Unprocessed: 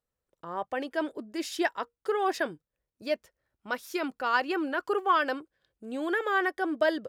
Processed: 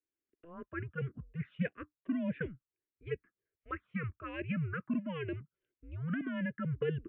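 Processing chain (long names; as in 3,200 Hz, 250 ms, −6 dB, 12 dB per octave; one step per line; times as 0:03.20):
single-sideband voice off tune −170 Hz 250–2,800 Hz
phaser swept by the level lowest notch 160 Hz, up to 1,300 Hz, full sweep at −24.5 dBFS
phaser with its sweep stopped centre 2,000 Hz, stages 4
level −2.5 dB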